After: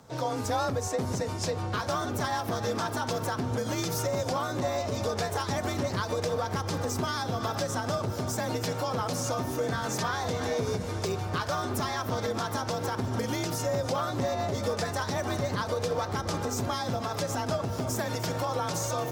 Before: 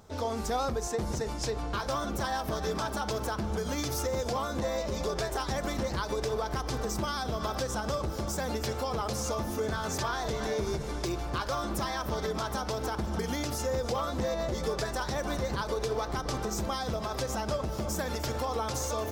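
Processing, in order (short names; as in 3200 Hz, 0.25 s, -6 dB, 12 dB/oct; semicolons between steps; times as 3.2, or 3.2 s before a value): frequency shift +40 Hz; harmoniser +4 st -15 dB; gain +1.5 dB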